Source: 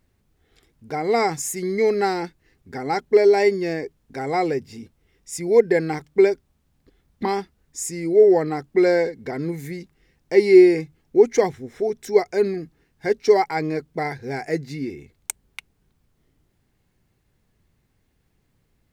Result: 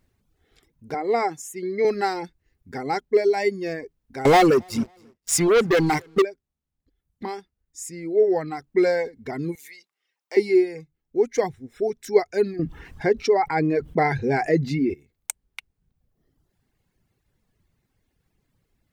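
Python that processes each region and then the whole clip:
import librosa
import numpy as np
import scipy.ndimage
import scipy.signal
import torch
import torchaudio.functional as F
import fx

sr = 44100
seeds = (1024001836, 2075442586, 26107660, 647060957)

y = fx.chain(x, sr, fx.highpass(hz=260.0, slope=12),
    fx.high_shelf(hz=2900.0, db=-9.5), at=(0.94, 1.85))
y = fx.chain(y, sr, fx.leveller(passes=5),
    fx.echo_feedback(ms=271, feedback_pct=24, wet_db=-20.5), at=(4.25, 6.22))
y = fx.chain(y, sr, fx.highpass(hz=860.0, slope=12),
    fx.peak_eq(hz=1700.0, db=-5.0, octaves=0.23), at=(9.55, 10.37))
y = fx.chain(y, sr, fx.lowpass(hz=2100.0, slope=6),
    fx.env_flatten(amount_pct=50), at=(12.59, 14.94))
y = fx.dereverb_blind(y, sr, rt60_s=1.1)
y = fx.rider(y, sr, range_db=4, speed_s=0.5)
y = y * librosa.db_to_amplitude(-4.5)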